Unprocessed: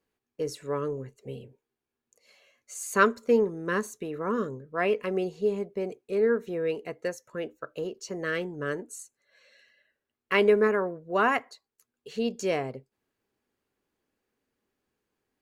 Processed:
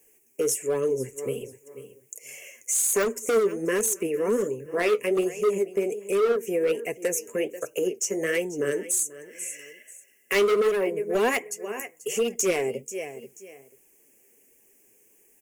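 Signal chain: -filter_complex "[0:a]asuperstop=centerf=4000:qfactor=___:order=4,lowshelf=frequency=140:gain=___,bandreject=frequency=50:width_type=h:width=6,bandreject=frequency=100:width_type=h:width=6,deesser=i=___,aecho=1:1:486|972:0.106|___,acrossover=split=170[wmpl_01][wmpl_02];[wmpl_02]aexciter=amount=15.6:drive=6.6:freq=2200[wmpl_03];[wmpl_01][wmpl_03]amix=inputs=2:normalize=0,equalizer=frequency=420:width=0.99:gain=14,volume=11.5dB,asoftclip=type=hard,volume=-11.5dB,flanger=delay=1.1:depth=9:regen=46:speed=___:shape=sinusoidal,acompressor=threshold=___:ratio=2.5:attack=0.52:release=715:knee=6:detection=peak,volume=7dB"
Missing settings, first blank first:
0.81, 3, 0.8, 0.0212, 1.3, -31dB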